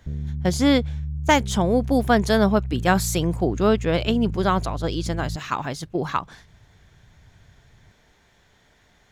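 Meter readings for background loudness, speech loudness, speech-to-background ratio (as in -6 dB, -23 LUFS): -31.5 LUFS, -22.5 LUFS, 9.0 dB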